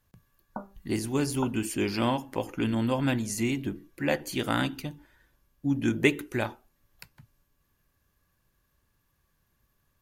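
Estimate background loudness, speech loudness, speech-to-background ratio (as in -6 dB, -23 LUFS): -43.5 LUFS, -29.0 LUFS, 14.5 dB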